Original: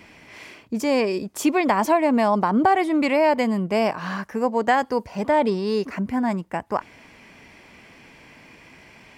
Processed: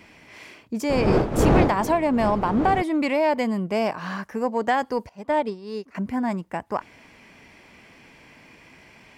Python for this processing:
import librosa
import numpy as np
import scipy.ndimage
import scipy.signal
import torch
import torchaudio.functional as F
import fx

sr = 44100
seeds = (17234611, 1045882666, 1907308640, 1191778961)

y = fx.dmg_wind(x, sr, seeds[0], corner_hz=440.0, level_db=-16.0, at=(0.89, 2.81), fade=0.02)
y = 10.0 ** (-7.5 / 20.0) * np.tanh(y / 10.0 ** (-7.5 / 20.0))
y = fx.upward_expand(y, sr, threshold_db=-28.0, expansion=2.5, at=(5.09, 5.95))
y = y * 10.0 ** (-2.0 / 20.0)